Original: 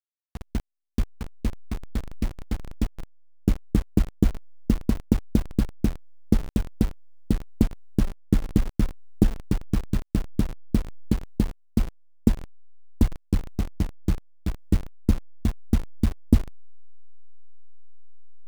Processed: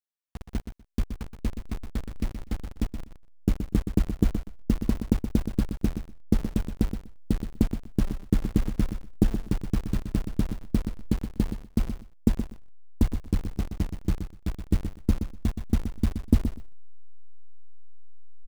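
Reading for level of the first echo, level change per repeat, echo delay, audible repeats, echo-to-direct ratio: -9.0 dB, -16.0 dB, 0.123 s, 2, -9.0 dB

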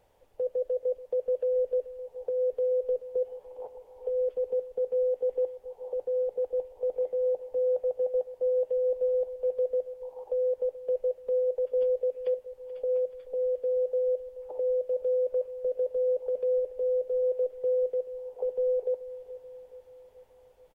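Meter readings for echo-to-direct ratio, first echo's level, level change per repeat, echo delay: -15.0 dB, -16.5 dB, -5.0 dB, 0.431 s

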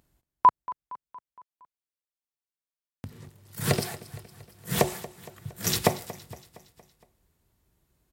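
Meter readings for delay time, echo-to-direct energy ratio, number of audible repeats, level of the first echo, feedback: 0.232 s, -16.5 dB, 4, -18.0 dB, 55%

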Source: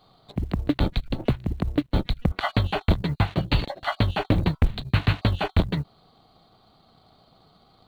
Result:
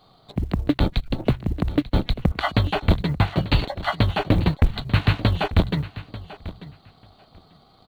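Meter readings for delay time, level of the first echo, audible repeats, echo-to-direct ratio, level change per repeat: 0.891 s, -16.0 dB, 2, -16.0 dB, -16.0 dB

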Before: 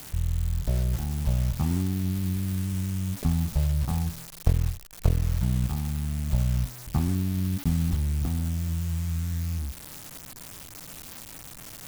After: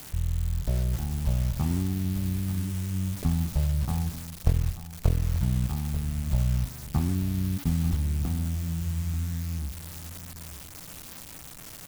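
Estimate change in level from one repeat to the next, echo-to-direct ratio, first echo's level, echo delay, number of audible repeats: -13.0 dB, -13.5 dB, -14.0 dB, 0.887 s, 2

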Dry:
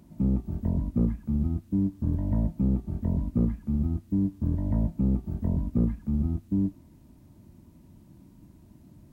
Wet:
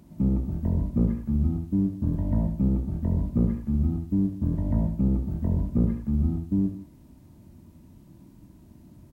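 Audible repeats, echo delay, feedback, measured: 2, 67 ms, no steady repeat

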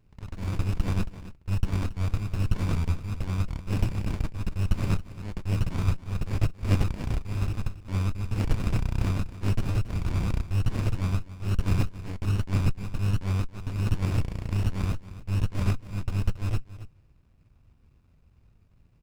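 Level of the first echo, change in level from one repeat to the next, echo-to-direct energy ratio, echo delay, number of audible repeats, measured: -15.0 dB, no steady repeat, -15.0 dB, 0.276 s, 1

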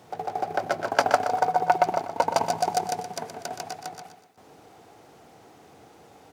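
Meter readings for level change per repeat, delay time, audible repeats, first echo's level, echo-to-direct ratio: -8.5 dB, 0.122 s, 3, -9.5 dB, -9.0 dB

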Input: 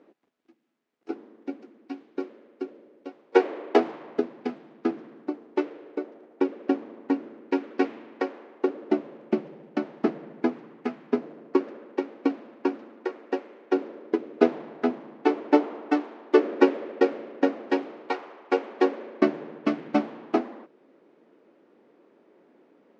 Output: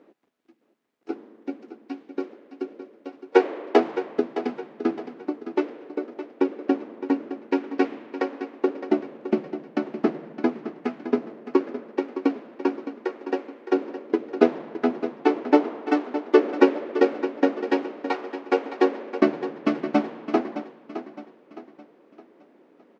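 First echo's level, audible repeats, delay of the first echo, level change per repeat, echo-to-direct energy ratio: -11.5 dB, 3, 0.614 s, -8.0 dB, -11.0 dB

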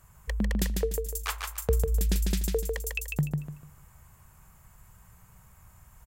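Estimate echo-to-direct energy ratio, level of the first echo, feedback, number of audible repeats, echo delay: -3.5 dB, -4.0 dB, 29%, 3, 0.148 s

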